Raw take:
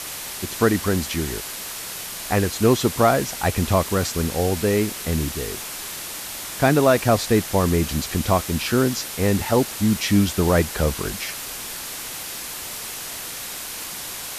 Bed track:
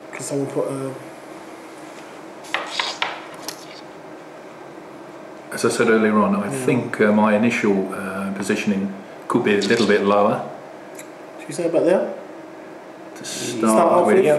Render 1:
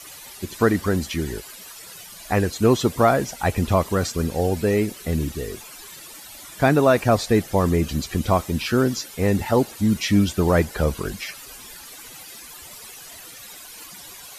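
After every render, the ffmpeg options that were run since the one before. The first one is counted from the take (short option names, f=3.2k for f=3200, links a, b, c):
-af "afftdn=nr=14:nf=-33"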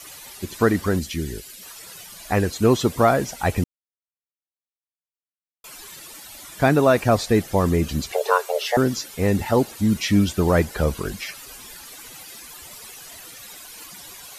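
-filter_complex "[0:a]asettb=1/sr,asplit=3[a][b][c];[a]atrim=end=0.994[d];[b]atrim=start=0.99:end=1.63,asetpts=PTS-STARTPTS,afade=t=in:d=0.004:c=qsin,afade=t=out:st=0.636:d=0.004:c=qsin,equalizer=f=950:w=0.87:g=-12[e];[c]atrim=start=1.626[f];[d][e]acrossfade=d=0.004:c1=hsin:c2=qsin[g];[g][f]acrossfade=d=0.004:c1=qsin:c2=hsin,asettb=1/sr,asplit=3[h][i][j];[h]atrim=end=8.124[k];[i]atrim=start=8.12:end=8.77,asetpts=PTS-STARTPTS,afade=t=in:d=0.004:c=qsin,afade=t=out:st=0.646:d=0.004:c=qsin,afreqshift=360[l];[j]atrim=start=8.766[m];[k][l]acrossfade=d=0.004:c1=hsin:c2=qsin[n];[n][m]acrossfade=d=0.004:c1=qsin:c2=hsin,asplit=3[o][p][q];[o]atrim=end=3.64,asetpts=PTS-STARTPTS,afade=t=out:st=3.636:d=0.004:c=hsin[r];[p]atrim=start=3.64:end=5.64,asetpts=PTS-STARTPTS,volume=0[s];[q]atrim=start=5.64,asetpts=PTS-STARTPTS,afade=t=in:d=0.004:c=hsin[t];[r][s][t]concat=n=3:v=0:a=1"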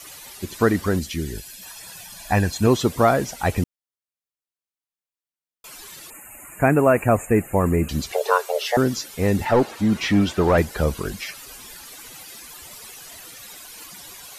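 -filter_complex "[0:a]asettb=1/sr,asplit=3[a][b][c];[a]atrim=end=1.354[d];[b]atrim=start=1.35:end=2.67,asetpts=PTS-STARTPTS,afade=t=in:d=0.004:c=qsin,afade=t=out:st=1.316:d=0.004:c=qsin,aecho=1:1:1.2:0.52,atrim=end_sample=58212[e];[c]atrim=start=2.666[f];[d][e]acrossfade=d=0.004:c1=hsin:c2=qsin[g];[g][f]acrossfade=d=0.004:c1=qsin:c2=hsin,asettb=1/sr,asplit=3[h][i][j];[h]atrim=end=6.104[k];[i]atrim=start=6.1:end=7.89,asetpts=PTS-STARTPTS,afade=t=in:d=0.004:c=qsin,afade=t=out:st=1.786:d=0.004:c=qsin,asuperstop=centerf=4400:order=20:qfactor=1.1[l];[j]atrim=start=7.886[m];[k][l]acrossfade=d=0.004:c1=hsin:c2=qsin[n];[n][m]acrossfade=d=0.004:c1=qsin:c2=hsin,asettb=1/sr,asplit=3[o][p][q];[o]atrim=end=9.454[r];[p]atrim=start=9.45:end=10.58,asetpts=PTS-STARTPTS,afade=t=in:d=0.004:c=qsin,afade=t=out:st=1.126:d=0.004:c=qsin,asplit=2[s][t];[t]highpass=f=720:p=1,volume=16dB,asoftclip=type=tanh:threshold=-7dB[u];[s][u]amix=inputs=2:normalize=0,lowpass=f=1.3k:p=1,volume=-6dB[v];[q]atrim=start=10.576[w];[r][v]acrossfade=d=0.004:c1=hsin:c2=qsin[x];[x][w]acrossfade=d=0.004:c1=qsin:c2=hsin"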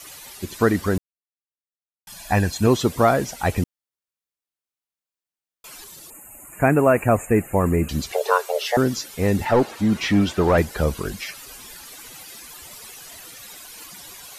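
-filter_complex "[0:a]asettb=1/sr,asplit=3[a][b][c];[a]atrim=end=5.844[d];[b]atrim=start=5.84:end=6.53,asetpts=PTS-STARTPTS,afade=t=in:d=0.004:c=qsin,afade=t=out:st=0.686:d=0.004:c=qsin,equalizer=f=2k:w=0.76:g=-9[e];[c]atrim=start=6.526[f];[d][e]acrossfade=d=0.004:c1=hsin:c2=qsin[g];[g][f]acrossfade=d=0.004:c1=qsin:c2=hsin,asplit=3[h][i][j];[h]atrim=end=0.98,asetpts=PTS-STARTPTS,afade=t=out:st=0.976:d=0.004:c=hsin[k];[i]atrim=start=0.98:end=2.07,asetpts=PTS-STARTPTS,volume=0[l];[j]atrim=start=2.07,asetpts=PTS-STARTPTS,afade=t=in:d=0.004:c=hsin[m];[k][l][m]concat=n=3:v=0:a=1"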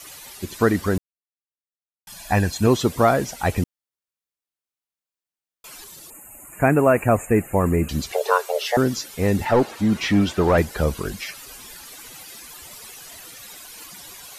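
-af anull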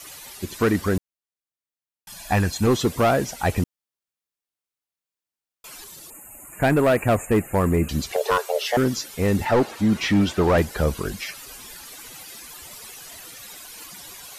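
-af "asoftclip=type=hard:threshold=-13dB"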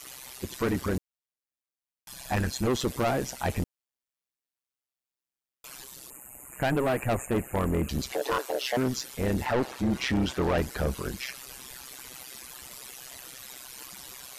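-af "tremolo=f=130:d=0.857,asoftclip=type=tanh:threshold=-20dB"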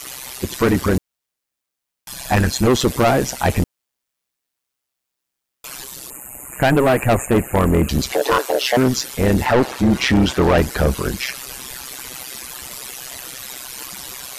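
-af "volume=11.5dB"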